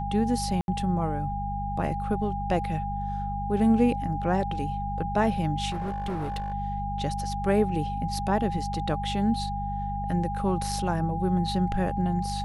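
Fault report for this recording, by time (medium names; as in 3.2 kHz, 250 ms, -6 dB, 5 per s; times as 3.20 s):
hum 50 Hz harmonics 4 -33 dBFS
whine 810 Hz -31 dBFS
0.61–0.68 s: dropout 71 ms
5.70–6.54 s: clipped -27 dBFS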